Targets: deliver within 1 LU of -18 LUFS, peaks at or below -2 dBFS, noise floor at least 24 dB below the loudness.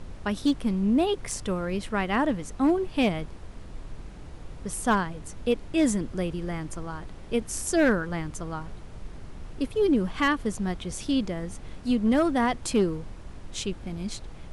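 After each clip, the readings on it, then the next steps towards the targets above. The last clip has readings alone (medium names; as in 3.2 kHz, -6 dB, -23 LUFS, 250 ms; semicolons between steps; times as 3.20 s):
clipped samples 0.4%; clipping level -15.5 dBFS; noise floor -43 dBFS; noise floor target -52 dBFS; loudness -27.5 LUFS; peak level -15.5 dBFS; loudness target -18.0 LUFS
-> clip repair -15.5 dBFS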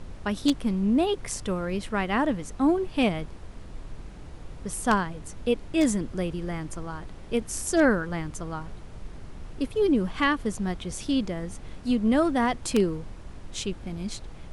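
clipped samples 0.0%; noise floor -43 dBFS; noise floor target -51 dBFS
-> noise print and reduce 8 dB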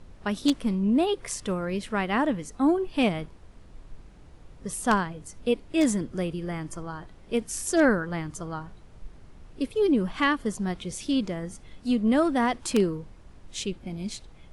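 noise floor -50 dBFS; noise floor target -51 dBFS
-> noise print and reduce 6 dB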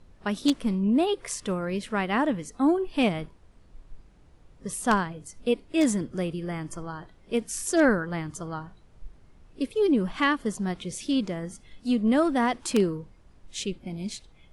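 noise floor -56 dBFS; loudness -27.0 LUFS; peak level -6.5 dBFS; loudness target -18.0 LUFS
-> trim +9 dB; peak limiter -2 dBFS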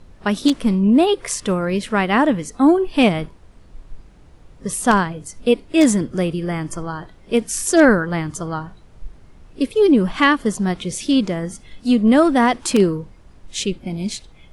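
loudness -18.0 LUFS; peak level -2.0 dBFS; noise floor -47 dBFS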